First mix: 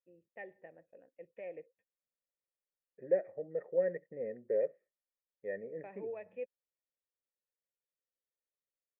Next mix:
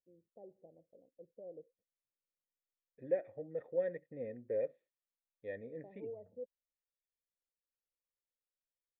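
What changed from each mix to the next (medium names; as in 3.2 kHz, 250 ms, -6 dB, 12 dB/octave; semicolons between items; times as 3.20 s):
first voice: add Gaussian low-pass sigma 14 samples; second voice: remove cabinet simulation 170–2200 Hz, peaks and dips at 190 Hz +9 dB, 270 Hz -8 dB, 400 Hz +8 dB, 610 Hz +5 dB, 1.2 kHz +3 dB, 1.9 kHz +5 dB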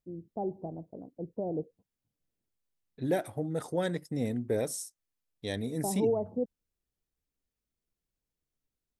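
first voice +8.5 dB; master: remove cascade formant filter e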